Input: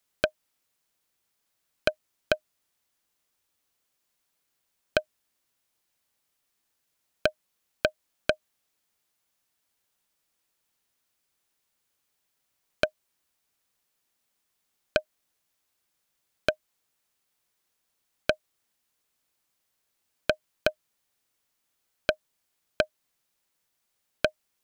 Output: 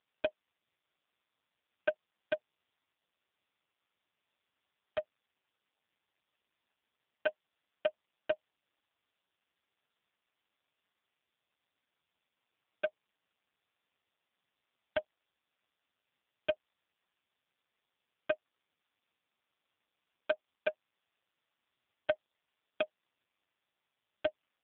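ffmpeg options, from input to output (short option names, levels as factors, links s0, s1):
-filter_complex "[0:a]lowshelf=f=400:g=-8,asplit=2[s0][s1];[s1]asoftclip=type=hard:threshold=0.158,volume=0.708[s2];[s0][s2]amix=inputs=2:normalize=0,volume=1.12" -ar 8000 -c:a libopencore_amrnb -b:a 5150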